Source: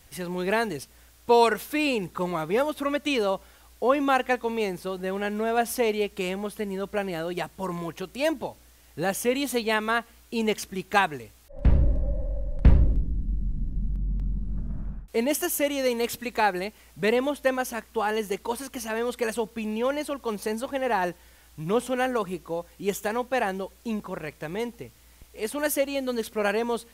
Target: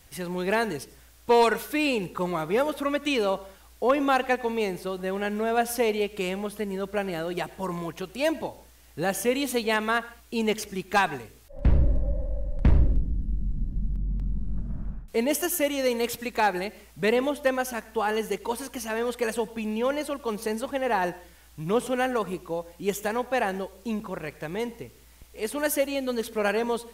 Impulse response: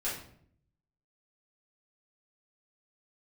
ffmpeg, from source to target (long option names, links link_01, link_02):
-filter_complex "[0:a]volume=13dB,asoftclip=hard,volume=-13dB,asplit=2[link_01][link_02];[1:a]atrim=start_sample=2205,atrim=end_sample=6174,adelay=79[link_03];[link_02][link_03]afir=irnorm=-1:irlink=0,volume=-22.5dB[link_04];[link_01][link_04]amix=inputs=2:normalize=0"